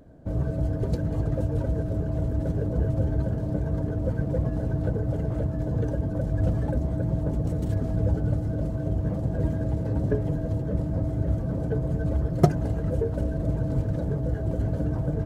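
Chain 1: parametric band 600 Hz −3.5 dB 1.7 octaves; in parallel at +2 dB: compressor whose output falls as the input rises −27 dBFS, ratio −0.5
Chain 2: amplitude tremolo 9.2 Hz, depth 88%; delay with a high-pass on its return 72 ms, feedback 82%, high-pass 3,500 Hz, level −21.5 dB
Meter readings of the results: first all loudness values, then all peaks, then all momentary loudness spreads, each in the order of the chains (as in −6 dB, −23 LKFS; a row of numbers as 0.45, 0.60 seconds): −22.0, −31.5 LKFS; −4.0, −13.5 dBFS; 1, 3 LU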